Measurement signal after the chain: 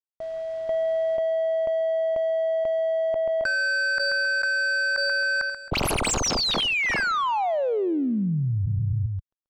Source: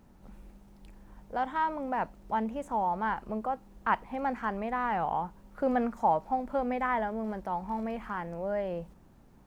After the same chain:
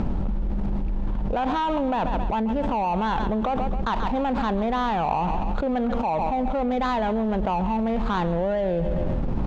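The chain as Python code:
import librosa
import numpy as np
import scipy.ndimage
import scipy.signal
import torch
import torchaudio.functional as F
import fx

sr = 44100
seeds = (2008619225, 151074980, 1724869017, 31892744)

y = scipy.signal.medfilt(x, 25)
y = fx.air_absorb(y, sr, metres=130.0)
y = fx.rider(y, sr, range_db=4, speed_s=2.0)
y = fx.low_shelf(y, sr, hz=67.0, db=9.0)
y = fx.echo_feedback(y, sr, ms=134, feedback_pct=45, wet_db=-18.0)
y = fx.env_flatten(y, sr, amount_pct=100)
y = F.gain(torch.from_numpy(y), 1.5).numpy()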